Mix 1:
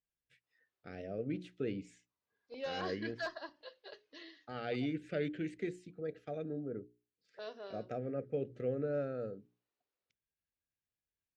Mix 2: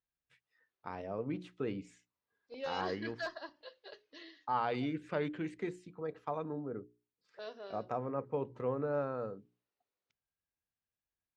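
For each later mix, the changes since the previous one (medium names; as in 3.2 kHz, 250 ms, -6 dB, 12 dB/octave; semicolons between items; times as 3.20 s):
first voice: remove Butterworth band-stop 990 Hz, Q 1.1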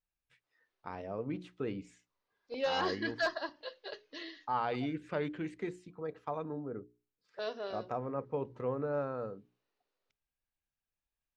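first voice: remove high-pass 67 Hz; second voice +7.5 dB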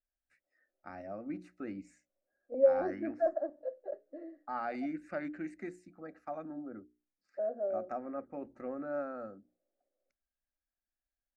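second voice: add resonant low-pass 540 Hz, resonance Q 4.4; master: add static phaser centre 660 Hz, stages 8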